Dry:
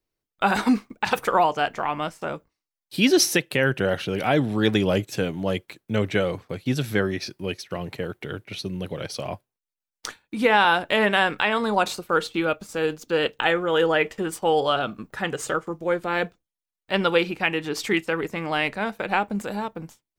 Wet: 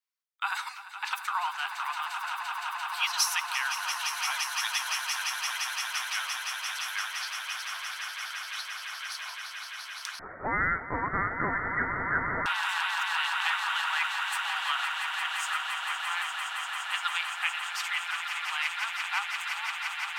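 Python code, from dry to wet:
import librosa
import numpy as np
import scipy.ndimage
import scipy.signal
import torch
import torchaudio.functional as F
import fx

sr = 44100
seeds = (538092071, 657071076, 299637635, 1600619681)

y = scipy.signal.sosfilt(scipy.signal.butter(8, 950.0, 'highpass', fs=sr, output='sos'), x)
y = fx.dynamic_eq(y, sr, hz=1700.0, q=4.6, threshold_db=-36.0, ratio=4.0, max_db=-3)
y = fx.echo_swell(y, sr, ms=172, loudest=8, wet_db=-9.0)
y = fx.freq_invert(y, sr, carrier_hz=2900, at=(10.19, 12.46))
y = F.gain(torch.from_numpy(y), -5.5).numpy()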